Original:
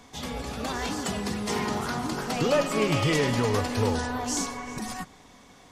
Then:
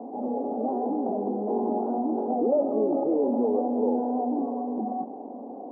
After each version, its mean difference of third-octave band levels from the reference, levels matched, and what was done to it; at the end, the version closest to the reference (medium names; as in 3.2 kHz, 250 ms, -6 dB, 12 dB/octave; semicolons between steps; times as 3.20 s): 21.0 dB: Chebyshev band-pass 230–810 Hz, order 4; level flattener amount 50%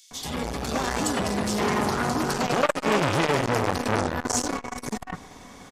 4.5 dB: bands offset in time highs, lows 110 ms, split 3.4 kHz; transformer saturation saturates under 1.6 kHz; trim +8 dB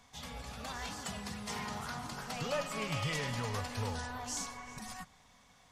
3.0 dB: peaking EQ 340 Hz -14.5 dB 0.89 oct; trim -8.5 dB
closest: third